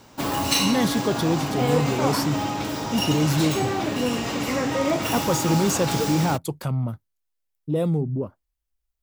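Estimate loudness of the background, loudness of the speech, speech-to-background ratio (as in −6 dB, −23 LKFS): −25.0 LKFS, −25.0 LKFS, 0.0 dB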